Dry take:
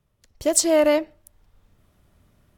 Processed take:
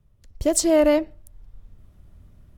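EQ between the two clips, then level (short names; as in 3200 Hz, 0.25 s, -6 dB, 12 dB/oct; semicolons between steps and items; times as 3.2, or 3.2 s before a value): low shelf 86 Hz +12 dB; low shelf 470 Hz +7 dB; -3.0 dB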